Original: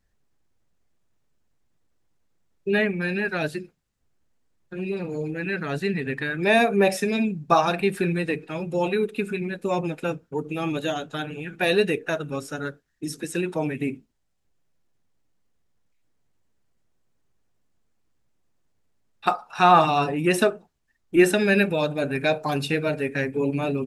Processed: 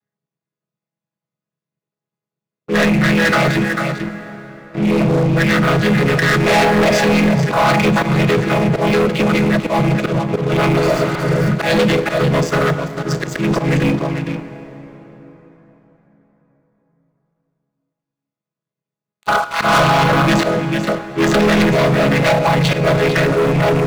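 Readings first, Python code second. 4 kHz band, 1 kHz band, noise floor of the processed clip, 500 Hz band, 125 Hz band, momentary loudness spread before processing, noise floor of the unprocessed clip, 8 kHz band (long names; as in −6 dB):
+10.5 dB, +7.5 dB, below −85 dBFS, +8.0 dB, +15.0 dB, 13 LU, −72 dBFS, +9.5 dB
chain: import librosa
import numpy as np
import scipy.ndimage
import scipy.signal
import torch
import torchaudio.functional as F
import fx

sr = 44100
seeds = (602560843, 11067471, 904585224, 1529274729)

p1 = fx.chord_vocoder(x, sr, chord='minor triad', root=49)
p2 = fx.dynamic_eq(p1, sr, hz=1900.0, q=0.73, threshold_db=-41.0, ratio=4.0, max_db=5)
p3 = fx.over_compress(p2, sr, threshold_db=-32.0, ratio=-1.0)
p4 = p2 + F.gain(torch.from_numpy(p3), -0.5).numpy()
p5 = fx.peak_eq(p4, sr, hz=220.0, db=-7.5, octaves=2.2)
p6 = p5 + fx.echo_single(p5, sr, ms=445, db=-11.0, dry=0)
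p7 = fx.auto_swell(p6, sr, attack_ms=140.0)
p8 = fx.leveller(p7, sr, passes=5)
p9 = fx.spec_repair(p8, sr, seeds[0], start_s=10.83, length_s=0.64, low_hz=670.0, high_hz=4300.0, source='both')
y = fx.rev_plate(p9, sr, seeds[1], rt60_s=4.6, hf_ratio=0.6, predelay_ms=0, drr_db=11.0)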